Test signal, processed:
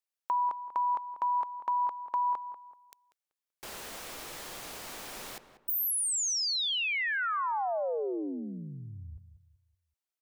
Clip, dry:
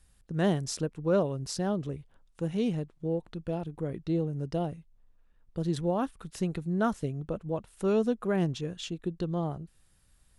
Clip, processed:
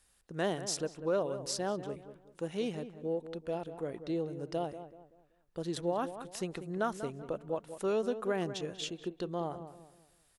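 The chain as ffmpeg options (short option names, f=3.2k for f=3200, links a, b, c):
-filter_complex "[0:a]bass=f=250:g=-14,treble=f=4k:g=1,acompressor=threshold=-29dB:ratio=2,asplit=2[a][b];[b]adelay=191,lowpass=f=1.7k:p=1,volume=-11dB,asplit=2[c][d];[d]adelay=191,lowpass=f=1.7k:p=1,volume=0.36,asplit=2[e][f];[f]adelay=191,lowpass=f=1.7k:p=1,volume=0.36,asplit=2[g][h];[h]adelay=191,lowpass=f=1.7k:p=1,volume=0.36[i];[a][c][e][g][i]amix=inputs=5:normalize=0"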